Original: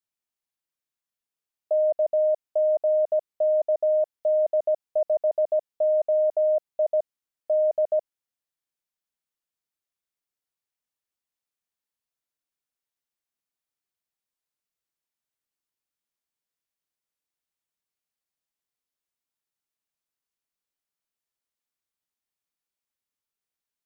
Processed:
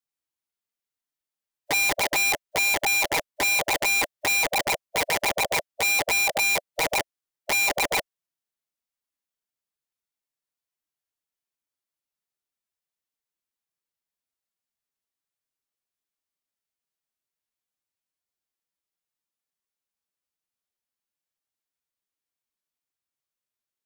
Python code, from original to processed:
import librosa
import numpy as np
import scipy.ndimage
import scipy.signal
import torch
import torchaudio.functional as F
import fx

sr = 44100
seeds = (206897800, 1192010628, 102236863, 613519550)

y = fx.pitch_keep_formants(x, sr, semitones=4.5)
y = (np.mod(10.0 ** (19.0 / 20.0) * y + 1.0, 2.0) - 1.0) / 10.0 ** (19.0 / 20.0)